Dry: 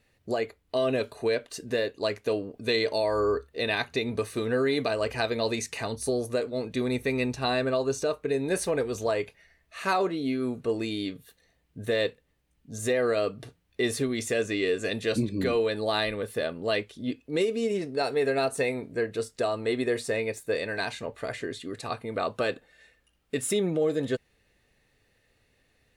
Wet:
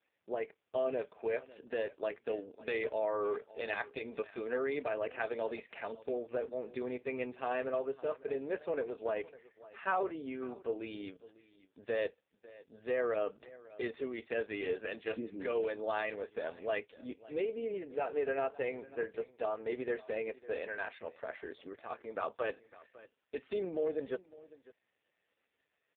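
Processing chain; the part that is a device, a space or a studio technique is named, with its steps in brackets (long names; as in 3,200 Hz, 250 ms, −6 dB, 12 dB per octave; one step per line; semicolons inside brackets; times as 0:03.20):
satellite phone (band-pass filter 380–3,100 Hz; single-tap delay 552 ms −19.5 dB; level −5.5 dB; AMR narrowband 4.75 kbit/s 8,000 Hz)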